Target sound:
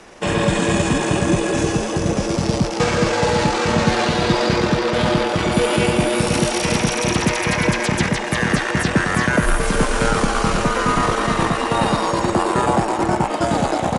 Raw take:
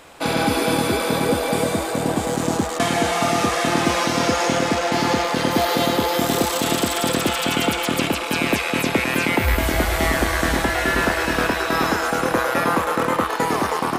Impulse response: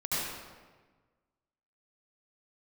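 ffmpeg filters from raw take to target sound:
-af "afreqshift=-29,asetrate=32097,aresample=44100,atempo=1.37395,volume=2.5dB"

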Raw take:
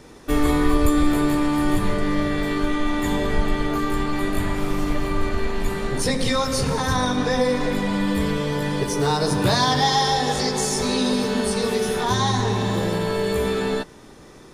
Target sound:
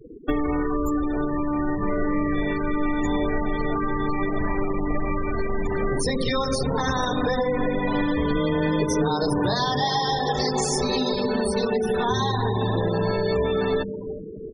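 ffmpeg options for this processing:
ffmpeg -i in.wav -filter_complex "[0:a]asplit=3[link_01][link_02][link_03];[link_01]afade=type=out:start_time=10.15:duration=0.02[link_04];[link_02]lowpass=7700,afade=type=in:start_time=10.15:duration=0.02,afade=type=out:start_time=10.6:duration=0.02[link_05];[link_03]afade=type=in:start_time=10.6:duration=0.02[link_06];[link_04][link_05][link_06]amix=inputs=3:normalize=0,acrossover=split=160|4100[link_07][link_08][link_09];[link_07]alimiter=limit=-21.5dB:level=0:latency=1:release=16[link_10];[link_10][link_08][link_09]amix=inputs=3:normalize=0,asettb=1/sr,asplit=3[link_11][link_12][link_13];[link_11]atrim=end=6.554[link_14];[link_12]atrim=start=6.55:end=7.24,asetpts=PTS-STARTPTS,afade=type=in:duration=0.004:curve=qsin,afade=type=out:start_time=0.686:duration=0.004:curve=qsin,aeval=exprs='clip(val(0),-1,0.0631)':channel_layout=same[link_15];[link_13]atrim=start=7.236[link_16];[link_14][link_15]acrossfade=duration=0.004:curve1=hsin:curve2=qsin[link_17];[link_17][link_16]acrossfade=duration=0.004:curve1=qsin:curve2=hsin,bandreject=frequency=50:width_type=h:width=6,bandreject=frequency=100:width_type=h:width=6,bandreject=frequency=150:width_type=h:width=6,bandreject=frequency=200:width_type=h:width=6,bandreject=frequency=250:width_type=h:width=6,acompressor=threshold=-27dB:ratio=16,asplit=2[link_18][link_19];[link_19]adelay=354,lowpass=frequency=2400:poles=1,volume=-11dB,asplit=2[link_20][link_21];[link_21]adelay=354,lowpass=frequency=2400:poles=1,volume=0.53,asplit=2[link_22][link_23];[link_23]adelay=354,lowpass=frequency=2400:poles=1,volume=0.53,asplit=2[link_24][link_25];[link_25]adelay=354,lowpass=frequency=2400:poles=1,volume=0.53,asplit=2[link_26][link_27];[link_27]adelay=354,lowpass=frequency=2400:poles=1,volume=0.53,asplit=2[link_28][link_29];[link_29]adelay=354,lowpass=frequency=2400:poles=1,volume=0.53[link_30];[link_18][link_20][link_22][link_24][link_26][link_28][link_30]amix=inputs=7:normalize=0,asplit=3[link_31][link_32][link_33];[link_31]afade=type=out:start_time=8.33:duration=0.02[link_34];[link_32]afreqshift=14,afade=type=in:start_time=8.33:duration=0.02,afade=type=out:start_time=9.08:duration=0.02[link_35];[link_33]afade=type=in:start_time=9.08:duration=0.02[link_36];[link_34][link_35][link_36]amix=inputs=3:normalize=0,afftfilt=real='re*gte(hypot(re,im),0.0251)':imag='im*gte(hypot(re,im),0.0251)':win_size=1024:overlap=0.75,volume=7.5dB" out.wav

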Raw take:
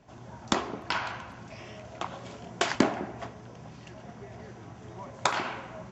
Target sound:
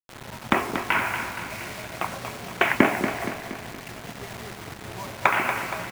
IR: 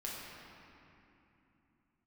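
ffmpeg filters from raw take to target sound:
-filter_complex "[0:a]highshelf=frequency=3400:width_type=q:width=3:gain=-13.5,acrusher=bits=6:mix=0:aa=0.000001,asplit=2[link_01][link_02];[link_02]aecho=0:1:235|470|705|940|1175|1410:0.376|0.199|0.106|0.056|0.0297|0.0157[link_03];[link_01][link_03]amix=inputs=2:normalize=0,volume=4.5dB"

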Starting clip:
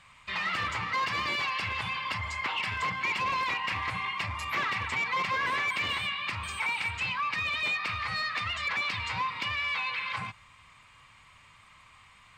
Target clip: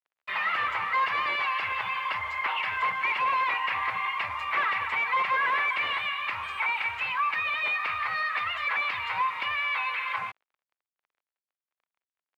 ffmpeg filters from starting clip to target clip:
ffmpeg -i in.wav -filter_complex "[0:a]acrusher=bits=6:mix=0:aa=0.5,acrossover=split=470 2900:gain=0.126 1 0.0631[link_01][link_02][link_03];[link_01][link_02][link_03]amix=inputs=3:normalize=0,volume=5dB" out.wav

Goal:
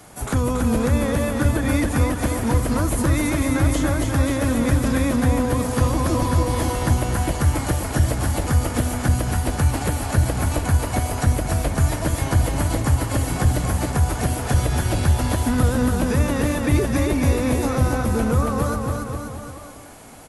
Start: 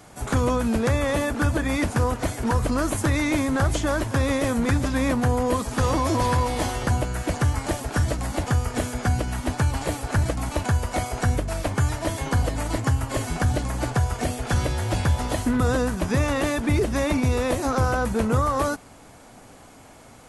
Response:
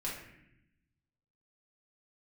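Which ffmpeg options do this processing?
-filter_complex "[0:a]equalizer=frequency=11000:width_type=o:width=0.51:gain=7.5,acrossover=split=360[link_01][link_02];[link_02]acompressor=threshold=-28dB:ratio=6[link_03];[link_01][link_03]amix=inputs=2:normalize=0,asplit=2[link_04][link_05];[link_05]aecho=0:1:280|532|758.8|962.9|1147:0.631|0.398|0.251|0.158|0.1[link_06];[link_04][link_06]amix=inputs=2:normalize=0,volume=2dB"

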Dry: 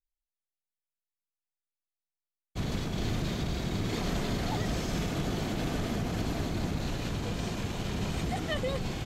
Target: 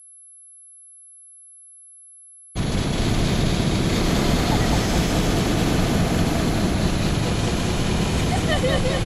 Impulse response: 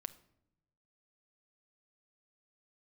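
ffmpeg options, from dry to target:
-filter_complex "[0:a]aecho=1:1:209|418|627|836|1045|1254|1463|1672:0.708|0.411|0.238|0.138|0.0801|0.0465|0.027|0.0156,asplit=2[link_01][link_02];[1:a]atrim=start_sample=2205[link_03];[link_02][link_03]afir=irnorm=-1:irlink=0,volume=-1dB[link_04];[link_01][link_04]amix=inputs=2:normalize=0,afftfilt=real='re*gte(hypot(re,im),0.00355)':imag='im*gte(hypot(re,im),0.00355)':win_size=1024:overlap=0.75,aeval=exprs='val(0)+0.00282*sin(2*PI*11000*n/s)':channel_layout=same,highshelf=frequency=10000:gain=4.5,volume=5dB"

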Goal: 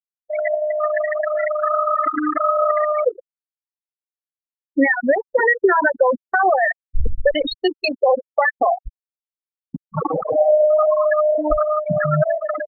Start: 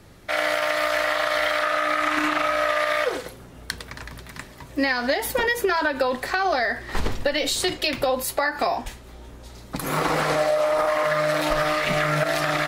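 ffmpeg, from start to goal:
ffmpeg -i in.wav -af "adynamicsmooth=sensitivity=5:basefreq=2800,afftfilt=real='re*gte(hypot(re,im),0.316)':imag='im*gte(hypot(re,im),0.316)':win_size=1024:overlap=0.75,anlmdn=10,volume=8dB" out.wav

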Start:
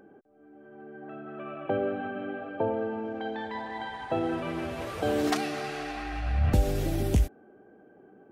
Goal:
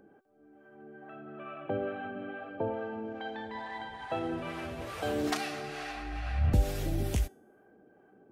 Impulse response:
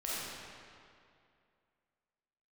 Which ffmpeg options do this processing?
-filter_complex "[0:a]equalizer=frequency=330:width_type=o:width=2.6:gain=-3.5,bandreject=frequency=383.8:width_type=h:width=4,bandreject=frequency=767.6:width_type=h:width=4,bandreject=frequency=1151.4:width_type=h:width=4,bandreject=frequency=1535.2:width_type=h:width=4,bandreject=frequency=1919:width_type=h:width=4,bandreject=frequency=2302.8:width_type=h:width=4,bandreject=frequency=2686.6:width_type=h:width=4,bandreject=frequency=3070.4:width_type=h:width=4,bandreject=frequency=3454.2:width_type=h:width=4,bandreject=frequency=3838:width_type=h:width=4,bandreject=frequency=4221.8:width_type=h:width=4,bandreject=frequency=4605.6:width_type=h:width=4,bandreject=frequency=4989.4:width_type=h:width=4,bandreject=frequency=5373.2:width_type=h:width=4,bandreject=frequency=5757:width_type=h:width=4,bandreject=frequency=6140.8:width_type=h:width=4,bandreject=frequency=6524.6:width_type=h:width=4,bandreject=frequency=6908.4:width_type=h:width=4,bandreject=frequency=7292.2:width_type=h:width=4,bandreject=frequency=7676:width_type=h:width=4,bandreject=frequency=8059.8:width_type=h:width=4,bandreject=frequency=8443.6:width_type=h:width=4,bandreject=frequency=8827.4:width_type=h:width=4,bandreject=frequency=9211.2:width_type=h:width=4,bandreject=frequency=9595:width_type=h:width=4,bandreject=frequency=9978.8:width_type=h:width=4,bandreject=frequency=10362.6:width_type=h:width=4,bandreject=frequency=10746.4:width_type=h:width=4,bandreject=frequency=11130.2:width_type=h:width=4,bandreject=frequency=11514:width_type=h:width=4,bandreject=frequency=11897.8:width_type=h:width=4,bandreject=frequency=12281.6:width_type=h:width=4,bandreject=frequency=12665.4:width_type=h:width=4,bandreject=frequency=13049.2:width_type=h:width=4,bandreject=frequency=13433:width_type=h:width=4,bandreject=frequency=13816.8:width_type=h:width=4,bandreject=frequency=14200.6:width_type=h:width=4,bandreject=frequency=14584.4:width_type=h:width=4,bandreject=frequency=14968.2:width_type=h:width=4,acrossover=split=590[link_01][link_02];[link_01]aeval=exprs='val(0)*(1-0.5/2+0.5/2*cos(2*PI*2.3*n/s))':channel_layout=same[link_03];[link_02]aeval=exprs='val(0)*(1-0.5/2-0.5/2*cos(2*PI*2.3*n/s))':channel_layout=same[link_04];[link_03][link_04]amix=inputs=2:normalize=0"

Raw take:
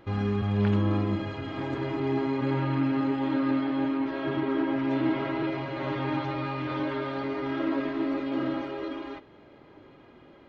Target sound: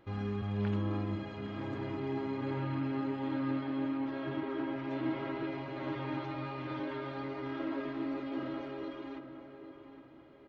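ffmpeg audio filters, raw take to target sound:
ffmpeg -i in.wav -filter_complex "[0:a]asplit=2[link_01][link_02];[link_02]adelay=812,lowpass=frequency=2500:poles=1,volume=-10dB,asplit=2[link_03][link_04];[link_04]adelay=812,lowpass=frequency=2500:poles=1,volume=0.37,asplit=2[link_05][link_06];[link_06]adelay=812,lowpass=frequency=2500:poles=1,volume=0.37,asplit=2[link_07][link_08];[link_08]adelay=812,lowpass=frequency=2500:poles=1,volume=0.37[link_09];[link_01][link_03][link_05][link_07][link_09]amix=inputs=5:normalize=0,volume=-8.5dB" out.wav

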